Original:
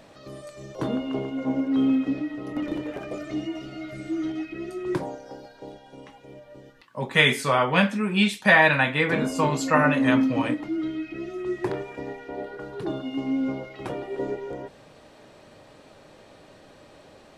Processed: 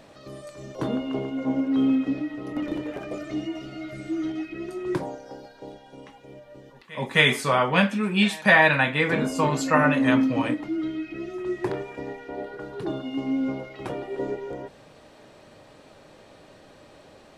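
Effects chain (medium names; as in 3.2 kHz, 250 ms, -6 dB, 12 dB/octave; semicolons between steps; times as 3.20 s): reverse echo 262 ms -23.5 dB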